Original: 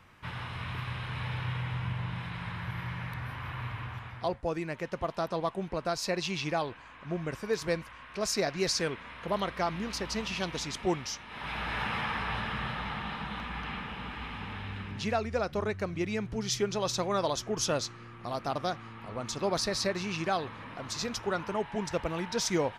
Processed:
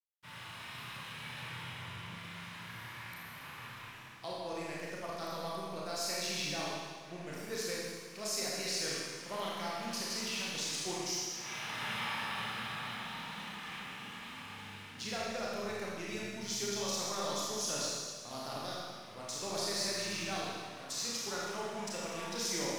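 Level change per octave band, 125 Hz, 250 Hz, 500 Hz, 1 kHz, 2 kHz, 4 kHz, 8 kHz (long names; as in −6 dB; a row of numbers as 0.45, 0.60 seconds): −12.0, −8.5, −8.0, −6.5, −4.5, −1.0, +1.0 decibels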